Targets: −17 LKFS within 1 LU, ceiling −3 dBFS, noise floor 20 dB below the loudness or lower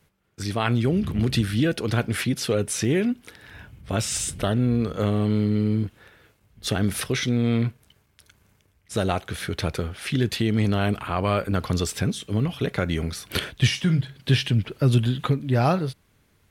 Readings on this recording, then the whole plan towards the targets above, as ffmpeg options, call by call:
integrated loudness −24.5 LKFS; sample peak −6.5 dBFS; target loudness −17.0 LKFS
→ -af "volume=7.5dB,alimiter=limit=-3dB:level=0:latency=1"

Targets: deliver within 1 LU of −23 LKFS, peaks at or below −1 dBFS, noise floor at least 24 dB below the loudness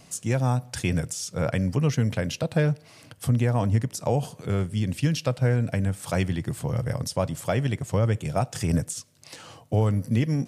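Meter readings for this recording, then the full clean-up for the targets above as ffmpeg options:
integrated loudness −26.0 LKFS; sample peak −11.5 dBFS; target loudness −23.0 LKFS
→ -af "volume=3dB"

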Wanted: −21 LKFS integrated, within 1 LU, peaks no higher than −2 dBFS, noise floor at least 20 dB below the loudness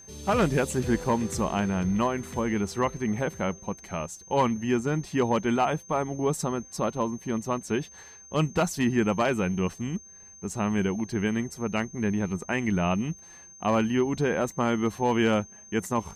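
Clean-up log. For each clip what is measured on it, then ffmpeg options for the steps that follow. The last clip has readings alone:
interfering tone 6,300 Hz; level of the tone −47 dBFS; integrated loudness −27.5 LKFS; sample peak −12.5 dBFS; target loudness −21.0 LKFS
→ -af "bandreject=frequency=6300:width=30"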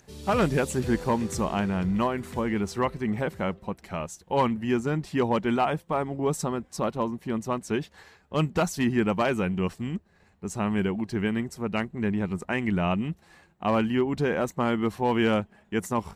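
interfering tone none found; integrated loudness −27.5 LKFS; sample peak −12.5 dBFS; target loudness −21.0 LKFS
→ -af "volume=6.5dB"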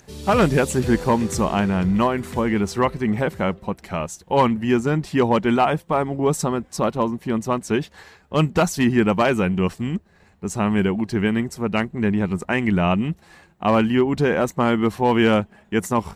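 integrated loudness −21.0 LKFS; sample peak −6.0 dBFS; background noise floor −55 dBFS

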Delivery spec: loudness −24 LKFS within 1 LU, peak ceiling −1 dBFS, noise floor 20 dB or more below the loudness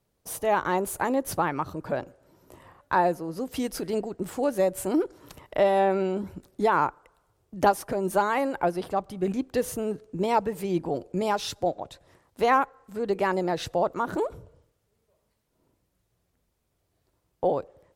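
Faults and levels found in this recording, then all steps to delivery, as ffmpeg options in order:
integrated loudness −27.0 LKFS; sample peak −8.0 dBFS; target loudness −24.0 LKFS
→ -af "volume=3dB"

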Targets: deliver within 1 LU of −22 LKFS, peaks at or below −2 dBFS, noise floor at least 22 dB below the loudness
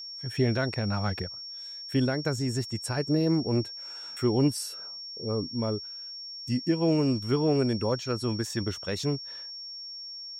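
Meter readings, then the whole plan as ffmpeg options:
interfering tone 5,500 Hz; level of the tone −38 dBFS; integrated loudness −29.5 LKFS; sample peak −14.0 dBFS; target loudness −22.0 LKFS
→ -af "bandreject=frequency=5500:width=30"
-af "volume=7.5dB"

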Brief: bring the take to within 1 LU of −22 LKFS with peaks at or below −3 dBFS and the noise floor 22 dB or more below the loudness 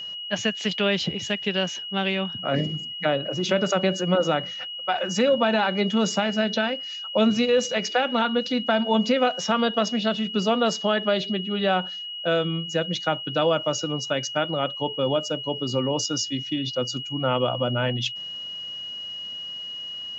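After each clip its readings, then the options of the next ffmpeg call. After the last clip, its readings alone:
interfering tone 2,900 Hz; level of the tone −32 dBFS; integrated loudness −24.5 LKFS; sample peak −9.5 dBFS; target loudness −22.0 LKFS
→ -af "bandreject=frequency=2900:width=30"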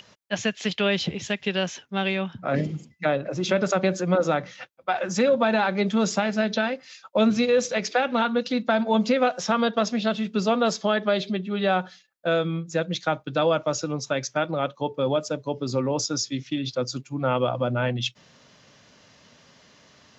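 interfering tone none found; integrated loudness −25.0 LKFS; sample peak −10.0 dBFS; target loudness −22.0 LKFS
→ -af "volume=3dB"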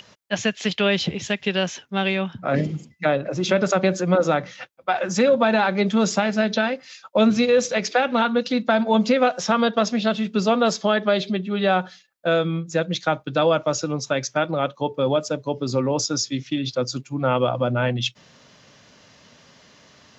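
integrated loudness −22.0 LKFS; sample peak −7.0 dBFS; background noise floor −53 dBFS

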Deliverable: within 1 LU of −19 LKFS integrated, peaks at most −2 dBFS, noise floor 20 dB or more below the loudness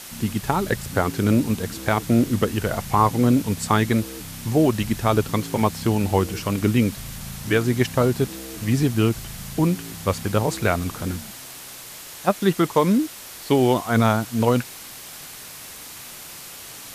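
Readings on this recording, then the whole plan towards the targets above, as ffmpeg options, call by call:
background noise floor −39 dBFS; target noise floor −42 dBFS; integrated loudness −22.0 LKFS; sample peak −4.0 dBFS; target loudness −19.0 LKFS
→ -af "afftdn=noise_reduction=6:noise_floor=-39"
-af "volume=3dB,alimiter=limit=-2dB:level=0:latency=1"

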